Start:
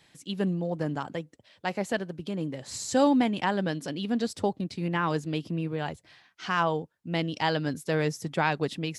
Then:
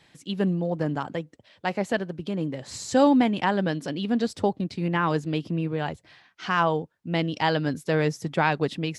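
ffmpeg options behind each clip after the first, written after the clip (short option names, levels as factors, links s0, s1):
-af "highshelf=f=6300:g=-8.5,volume=1.5"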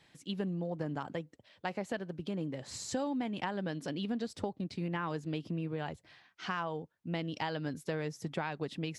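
-af "acompressor=threshold=0.0501:ratio=6,volume=0.501"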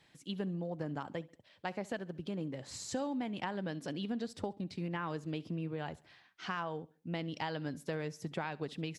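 -af "aecho=1:1:68|136|204:0.0794|0.0334|0.014,volume=0.794"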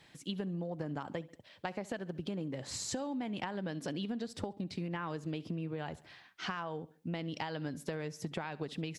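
-af "acompressor=threshold=0.01:ratio=6,volume=1.88"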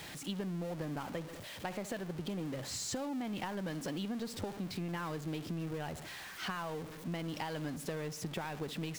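-af "aeval=exprs='val(0)+0.5*0.0106*sgn(val(0))':c=same,volume=0.708"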